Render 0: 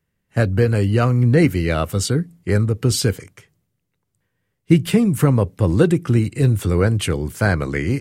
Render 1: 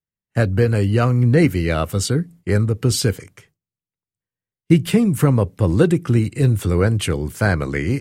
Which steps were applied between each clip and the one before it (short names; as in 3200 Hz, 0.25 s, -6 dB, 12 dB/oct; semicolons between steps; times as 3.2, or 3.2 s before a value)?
gate with hold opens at -40 dBFS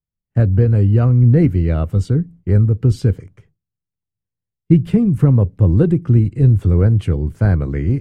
tilt -4 dB/oct; gain -7 dB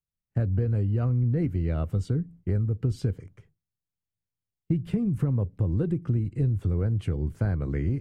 compressor 4:1, threshold -17 dBFS, peak gain reduction 10 dB; gain -6 dB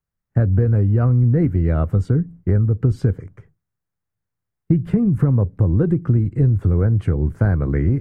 resonant high shelf 2200 Hz -8.5 dB, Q 1.5; gain +9 dB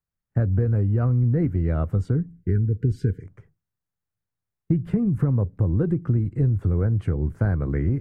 spectral delete 2.29–3.23, 480–1400 Hz; gain -5 dB